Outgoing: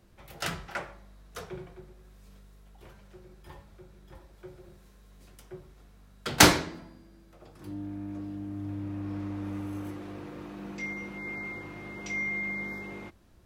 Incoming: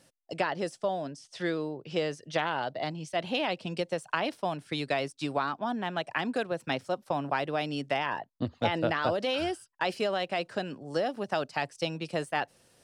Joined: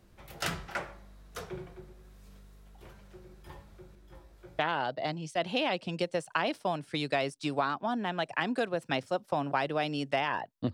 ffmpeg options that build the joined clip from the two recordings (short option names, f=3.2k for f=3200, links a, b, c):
-filter_complex "[0:a]asettb=1/sr,asplit=3[a][b][c];[a]atrim=end=3.954[d];[b]atrim=start=3.95:end=4.59,asetpts=PTS-STARTPTS,afade=t=in:d=0.004:c=qsin,afade=t=out:st=0.636:d=0.004:c=qsin,flanger=delay=17:depth=6.1:speed=0.17[e];[c]atrim=start=4.586[f];[d][e]acrossfade=d=0.004:c1=hsin:c2=qsin[g];[g][f]acrossfade=d=0.004:c1=qsin:c2=hsin,apad=whole_dur=10.73,atrim=end=10.73,atrim=end=4.592[h];[1:a]atrim=start=2.368:end=8.51[i];[h][i]acrossfade=d=0.004:c1=hsin:c2=hsin"